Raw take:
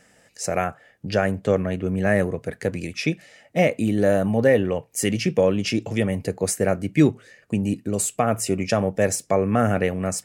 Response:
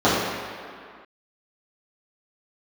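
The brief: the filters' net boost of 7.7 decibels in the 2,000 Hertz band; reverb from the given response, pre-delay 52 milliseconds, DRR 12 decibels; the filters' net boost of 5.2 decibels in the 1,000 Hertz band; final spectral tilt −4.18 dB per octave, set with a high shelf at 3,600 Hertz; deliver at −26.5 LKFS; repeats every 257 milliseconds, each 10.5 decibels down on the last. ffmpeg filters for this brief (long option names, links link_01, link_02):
-filter_complex "[0:a]equalizer=frequency=1000:width_type=o:gain=6,equalizer=frequency=2000:width_type=o:gain=5.5,highshelf=frequency=3600:gain=7.5,aecho=1:1:257|514|771:0.299|0.0896|0.0269,asplit=2[link_01][link_02];[1:a]atrim=start_sample=2205,adelay=52[link_03];[link_02][link_03]afir=irnorm=-1:irlink=0,volume=-36dB[link_04];[link_01][link_04]amix=inputs=2:normalize=0,volume=-7dB"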